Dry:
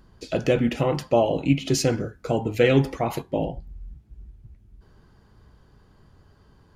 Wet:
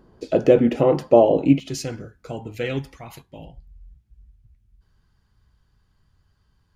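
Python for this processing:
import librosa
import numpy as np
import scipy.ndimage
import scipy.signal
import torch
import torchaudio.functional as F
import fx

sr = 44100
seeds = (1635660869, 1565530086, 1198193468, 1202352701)

y = fx.peak_eq(x, sr, hz=420.0, db=fx.steps((0.0, 13.5), (1.6, -3.5), (2.79, -13.0)), octaves=2.7)
y = F.gain(torch.from_numpy(y), -5.5).numpy()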